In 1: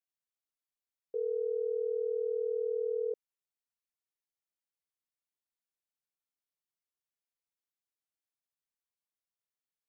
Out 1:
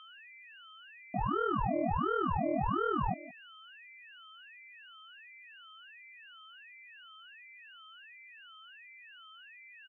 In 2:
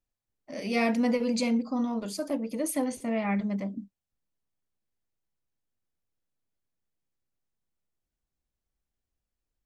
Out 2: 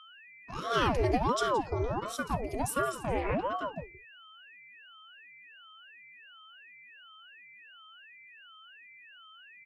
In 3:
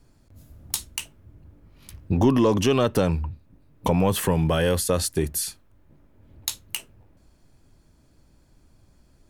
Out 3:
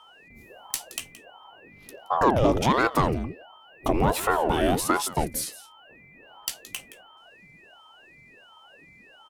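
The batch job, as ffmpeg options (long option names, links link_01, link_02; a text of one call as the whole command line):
ffmpeg -i in.wav -af "equalizer=frequency=470:width=3:gain=4,aecho=1:1:171:0.15,aeval=exprs='0.473*(cos(1*acos(clip(val(0)/0.473,-1,1)))-cos(1*PI/2))+0.0531*(cos(2*acos(clip(val(0)/0.473,-1,1)))-cos(2*PI/2))+0.0237*(cos(4*acos(clip(val(0)/0.473,-1,1)))-cos(4*PI/2))+0.00531*(cos(8*acos(clip(val(0)/0.473,-1,1)))-cos(8*PI/2))':channel_layout=same,aeval=exprs='val(0)+0.00398*sin(2*PI*2200*n/s)':channel_layout=same,aeval=exprs='val(0)*sin(2*PI*530*n/s+530*0.75/1.4*sin(2*PI*1.4*n/s))':channel_layout=same" out.wav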